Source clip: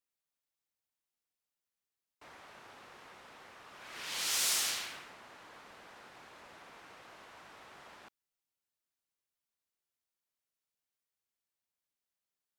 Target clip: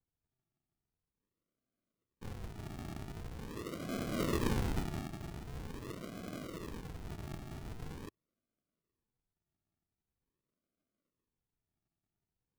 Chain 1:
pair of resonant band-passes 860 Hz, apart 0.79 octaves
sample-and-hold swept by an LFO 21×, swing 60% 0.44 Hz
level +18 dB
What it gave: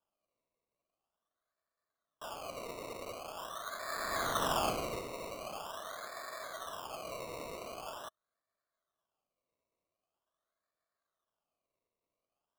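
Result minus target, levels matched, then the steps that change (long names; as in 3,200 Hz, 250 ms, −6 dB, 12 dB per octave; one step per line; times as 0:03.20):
sample-and-hold swept by an LFO: distortion −19 dB
change: sample-and-hold swept by an LFO 68×, swing 60% 0.44 Hz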